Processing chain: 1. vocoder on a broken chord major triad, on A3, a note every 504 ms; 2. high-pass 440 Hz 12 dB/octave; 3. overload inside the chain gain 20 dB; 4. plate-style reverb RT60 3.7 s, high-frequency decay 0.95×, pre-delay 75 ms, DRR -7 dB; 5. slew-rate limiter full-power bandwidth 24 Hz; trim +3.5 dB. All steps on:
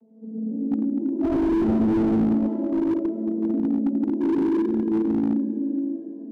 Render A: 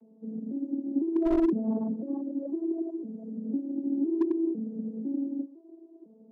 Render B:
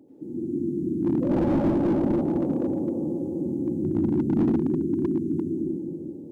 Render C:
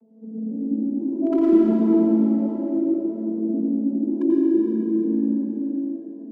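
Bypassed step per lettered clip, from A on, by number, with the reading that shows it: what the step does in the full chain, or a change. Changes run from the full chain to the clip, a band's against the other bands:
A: 4, crest factor change +2.5 dB; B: 1, 125 Hz band +6.0 dB; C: 5, distortion -5 dB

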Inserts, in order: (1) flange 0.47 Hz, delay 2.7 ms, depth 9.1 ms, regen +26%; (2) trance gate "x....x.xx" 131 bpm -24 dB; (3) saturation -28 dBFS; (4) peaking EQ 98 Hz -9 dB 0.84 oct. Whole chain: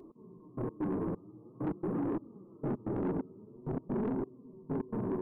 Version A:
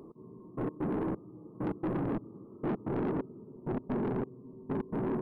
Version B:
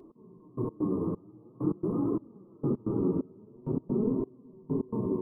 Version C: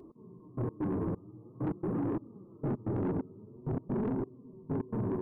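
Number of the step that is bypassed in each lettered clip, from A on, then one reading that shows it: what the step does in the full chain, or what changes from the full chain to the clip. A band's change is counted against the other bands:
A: 1, 2 kHz band +4.5 dB; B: 3, distortion -10 dB; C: 4, 125 Hz band +4.0 dB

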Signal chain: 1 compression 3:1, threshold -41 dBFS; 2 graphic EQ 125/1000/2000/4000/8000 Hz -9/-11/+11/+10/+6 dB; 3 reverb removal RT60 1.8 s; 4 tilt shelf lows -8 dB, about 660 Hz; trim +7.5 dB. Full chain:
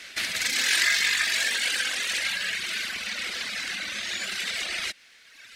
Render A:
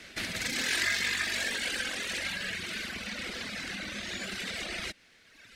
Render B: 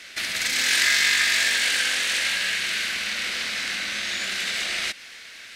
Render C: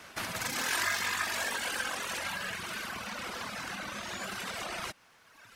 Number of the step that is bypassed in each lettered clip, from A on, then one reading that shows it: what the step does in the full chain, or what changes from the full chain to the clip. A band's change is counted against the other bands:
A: 4, 250 Hz band +12.0 dB; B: 3, loudness change +3.5 LU; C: 2, 4 kHz band -14.0 dB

